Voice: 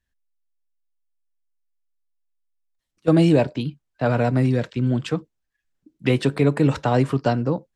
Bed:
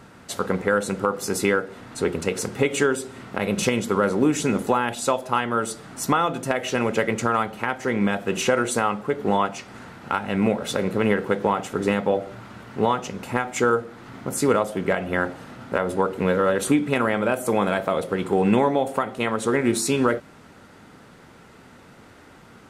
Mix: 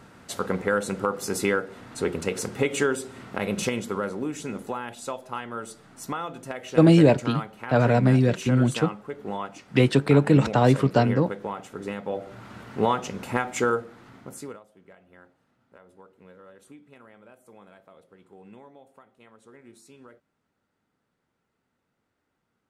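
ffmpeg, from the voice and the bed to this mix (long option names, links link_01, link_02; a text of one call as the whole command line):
ffmpeg -i stem1.wav -i stem2.wav -filter_complex "[0:a]adelay=3700,volume=0.5dB[link_01];[1:a]volume=6.5dB,afade=type=out:start_time=3.4:duration=0.83:silence=0.398107,afade=type=in:start_time=12.04:duration=0.52:silence=0.334965,afade=type=out:start_time=13.43:duration=1.17:silence=0.0398107[link_02];[link_01][link_02]amix=inputs=2:normalize=0" out.wav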